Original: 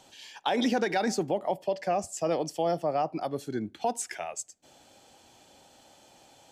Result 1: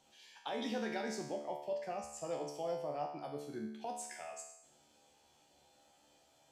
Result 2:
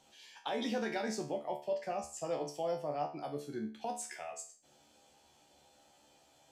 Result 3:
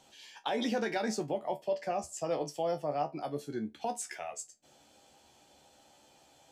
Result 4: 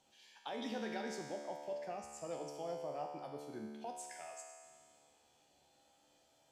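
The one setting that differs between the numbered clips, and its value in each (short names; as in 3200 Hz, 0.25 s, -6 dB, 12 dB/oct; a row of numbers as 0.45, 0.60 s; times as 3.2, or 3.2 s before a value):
resonator, decay: 0.8, 0.38, 0.16, 1.9 s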